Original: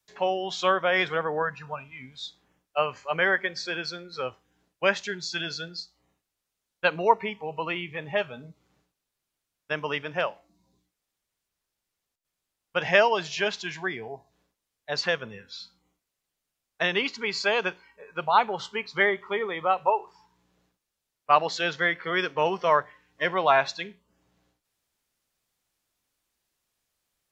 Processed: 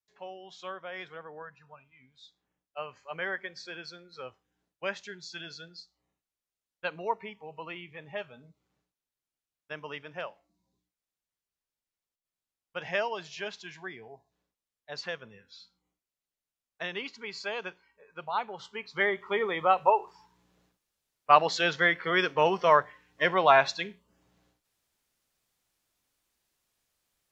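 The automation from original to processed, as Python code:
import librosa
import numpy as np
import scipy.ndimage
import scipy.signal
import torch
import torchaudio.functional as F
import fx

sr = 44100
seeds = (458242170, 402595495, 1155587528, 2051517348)

y = fx.gain(x, sr, db=fx.line((2.11, -17.0), (3.24, -10.5), (18.56, -10.5), (19.44, 0.5)))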